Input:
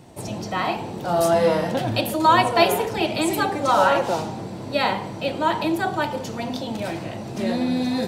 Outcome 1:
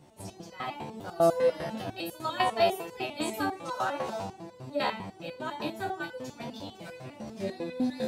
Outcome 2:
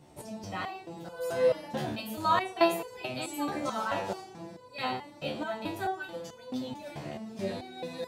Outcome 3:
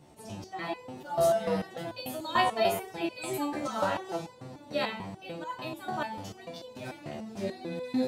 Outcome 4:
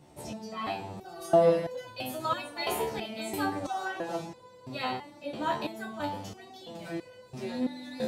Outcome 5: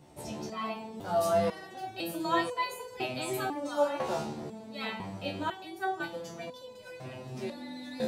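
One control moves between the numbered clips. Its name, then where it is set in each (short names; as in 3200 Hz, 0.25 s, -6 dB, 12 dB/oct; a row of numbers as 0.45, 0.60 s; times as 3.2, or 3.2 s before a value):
stepped resonator, rate: 10, 4.6, 6.8, 3, 2 Hz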